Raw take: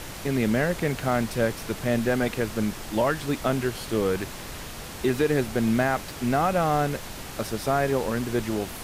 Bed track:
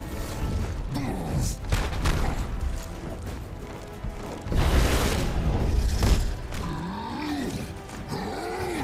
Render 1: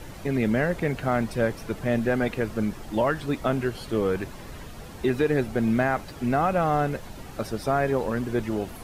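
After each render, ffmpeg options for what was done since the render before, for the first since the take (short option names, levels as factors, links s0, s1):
-af "afftdn=nr=10:nf=-38"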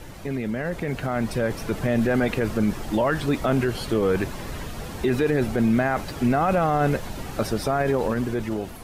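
-af "alimiter=limit=0.1:level=0:latency=1:release=22,dynaudnorm=f=350:g=7:m=2.24"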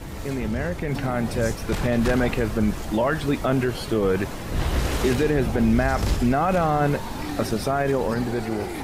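-filter_complex "[1:a]volume=0.75[s0];[0:a][s0]amix=inputs=2:normalize=0"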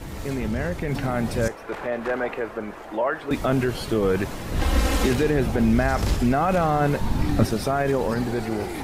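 -filter_complex "[0:a]asettb=1/sr,asplit=3[s0][s1][s2];[s0]atrim=end=1.484[s3];[s1]atrim=start=1.48:end=3.31,asetpts=PTS-STARTPTS,afade=t=in:d=0.004:c=qsin,afade=t=out:st=1.826:d=0.004:c=qsin,acrossover=split=350 2300:gain=0.0891 1 0.158[s4][s5][s6];[s4][s5][s6]amix=inputs=3:normalize=0[s7];[s2]atrim=start=3.306[s8];[s3][s7]acrossfade=d=0.004:c1=hsin:c2=qsin[s9];[s9][s8]acrossfade=d=0.004:c1=qsin:c2=hsin,asettb=1/sr,asplit=3[s10][s11][s12];[s10]atrim=end=4.614[s13];[s11]atrim=start=4.61:end=5.07,asetpts=PTS-STARTPTS,afade=t=in:d=0.004:c=qsin,afade=t=out:st=0.456:d=0.004:c=qsin,aecho=1:1:3.8:0.89,atrim=end_sample=20286[s14];[s12]atrim=start=5.066[s15];[s13][s14]acrossfade=d=0.004:c1=hsin:c2=qsin[s16];[s16][s15]acrossfade=d=0.004:c1=qsin:c2=hsin,asettb=1/sr,asplit=3[s17][s18][s19];[s17]atrim=end=7.014[s20];[s18]atrim=start=7.01:end=7.45,asetpts=PTS-STARTPTS,afade=t=in:d=0.004:c=qsin,afade=t=out:st=0.436:d=0.004:c=qsin,bass=f=250:g=12,treble=f=4000:g=-2[s21];[s19]atrim=start=7.446[s22];[s20][s21]acrossfade=d=0.004:c1=hsin:c2=qsin[s23];[s23][s22]acrossfade=d=0.004:c1=qsin:c2=hsin"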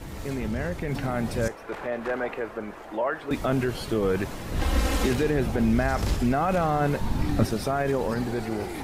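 -af "volume=0.708"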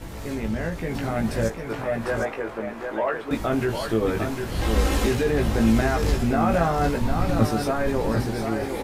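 -filter_complex "[0:a]asplit=2[s0][s1];[s1]adelay=18,volume=0.631[s2];[s0][s2]amix=inputs=2:normalize=0,aecho=1:1:752:0.501"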